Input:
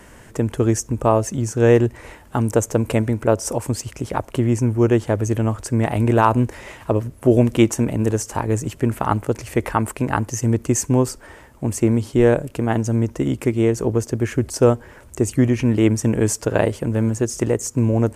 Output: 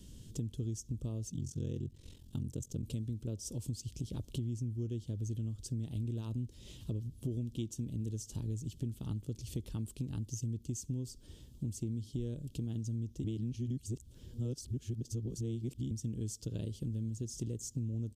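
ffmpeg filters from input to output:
-filter_complex "[0:a]asettb=1/sr,asplit=3[a][b][c];[a]atrim=end=1.304[d];[b]atrim=start=1.3:end=2.83,asetpts=PTS-STARTPTS,afade=t=in:d=0.004:c=qsin,afade=t=out:st=1.526:d=0.004:c=qsin,aeval=exprs='val(0)*sin(2*PI*22*n/s)':c=same[e];[c]atrim=start=2.826[f];[d][e]acrossfade=d=0.004:c1=hsin:c2=qsin[g];[g][f]acrossfade=d=0.004:c1=qsin:c2=hsin,asplit=3[h][i][j];[h]atrim=end=13.242[k];[i]atrim=start=13.238:end=15.912,asetpts=PTS-STARTPTS,areverse[l];[j]atrim=start=15.908[m];[k][l]acrossfade=d=0.004:c1=hsin:c2=hsin[n];[n][m]acrossfade=d=0.004:c1=hsin:c2=hsin,firequalizer=gain_entry='entry(150,0);entry(730,-28);entry(2000,-28);entry(3300,1);entry(13000,-3)':delay=0.05:min_phase=1,acompressor=threshold=-32dB:ratio=6,equalizer=f=9.3k:w=0.73:g=-6,volume=-3.5dB"

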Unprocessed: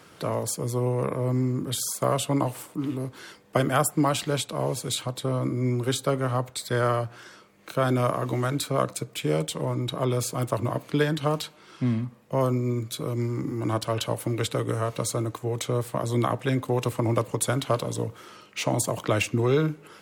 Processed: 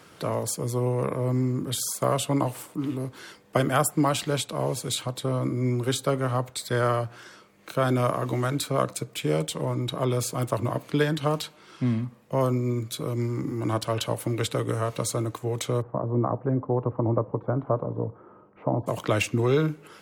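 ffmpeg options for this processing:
-filter_complex "[0:a]asplit=3[a][b][c];[a]afade=t=out:st=15.8:d=0.02[d];[b]lowpass=f=1.1k:w=0.5412,lowpass=f=1.1k:w=1.3066,afade=t=in:st=15.8:d=0.02,afade=t=out:st=18.86:d=0.02[e];[c]afade=t=in:st=18.86:d=0.02[f];[d][e][f]amix=inputs=3:normalize=0"

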